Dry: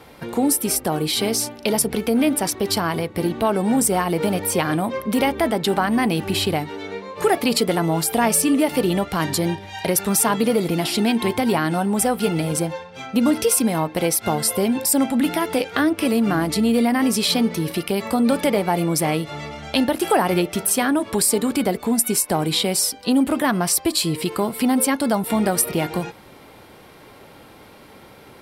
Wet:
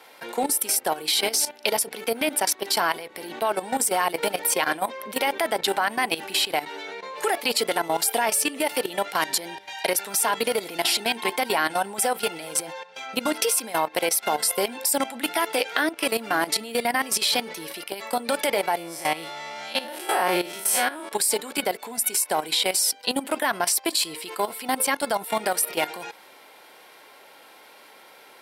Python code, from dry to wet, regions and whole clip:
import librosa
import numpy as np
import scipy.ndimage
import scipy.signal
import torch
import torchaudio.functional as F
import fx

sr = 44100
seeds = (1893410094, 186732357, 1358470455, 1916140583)

y = fx.chain(x, sr, fx.spec_blur(span_ms=100.0),
    fx.comb(ms=5.5, depth=0.43), at=(18.77, 21.12))
y = scipy.signal.sosfilt(scipy.signal.bessel(2, 770.0, 'highpass', norm='mag', fs=sr, output='sos'), y)
y = fx.notch(y, sr, hz=1200.0, q=9.6)
y = fx.level_steps(y, sr, step_db=14)
y = y * librosa.db_to_amplitude(6.0)